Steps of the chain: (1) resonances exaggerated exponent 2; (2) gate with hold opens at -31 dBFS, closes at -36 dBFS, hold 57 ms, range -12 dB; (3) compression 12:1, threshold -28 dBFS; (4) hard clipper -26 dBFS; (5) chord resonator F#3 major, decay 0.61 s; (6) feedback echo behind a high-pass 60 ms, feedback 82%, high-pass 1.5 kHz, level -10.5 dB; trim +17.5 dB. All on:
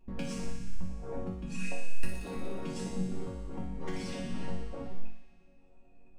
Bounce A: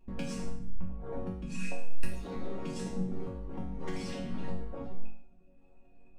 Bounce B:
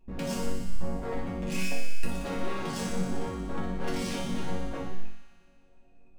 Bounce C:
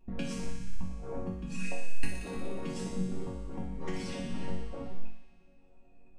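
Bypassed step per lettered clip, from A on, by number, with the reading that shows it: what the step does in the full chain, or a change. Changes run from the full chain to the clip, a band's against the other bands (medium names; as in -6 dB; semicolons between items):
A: 6, echo-to-direct -8.5 dB to none; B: 3, crest factor change -2.5 dB; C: 4, distortion -20 dB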